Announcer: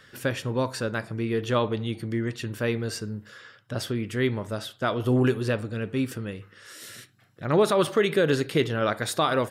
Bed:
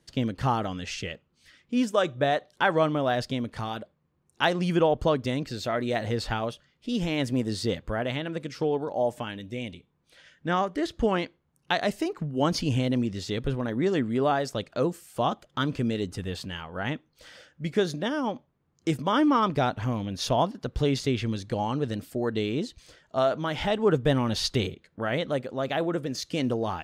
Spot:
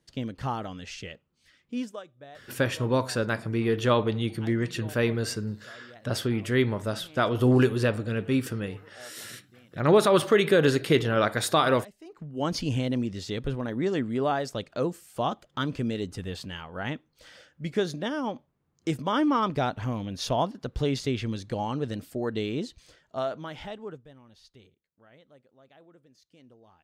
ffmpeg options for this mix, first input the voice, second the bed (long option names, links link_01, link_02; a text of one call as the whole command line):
ffmpeg -i stem1.wav -i stem2.wav -filter_complex "[0:a]adelay=2350,volume=1.5dB[link_01];[1:a]volume=15.5dB,afade=type=out:start_time=1.73:duration=0.31:silence=0.133352,afade=type=in:start_time=12.01:duration=0.57:silence=0.0891251,afade=type=out:start_time=22.68:duration=1.39:silence=0.0473151[link_02];[link_01][link_02]amix=inputs=2:normalize=0" out.wav